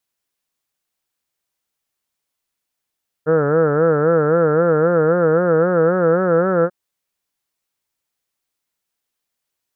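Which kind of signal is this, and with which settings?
formant-synthesis vowel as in heard, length 3.44 s, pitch 151 Hz, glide +3 st, vibrato 3.8 Hz, vibrato depth 1.25 st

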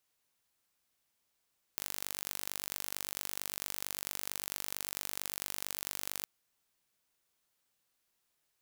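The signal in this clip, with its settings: pulse train 48.9 per s, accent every 2, -9 dBFS 4.46 s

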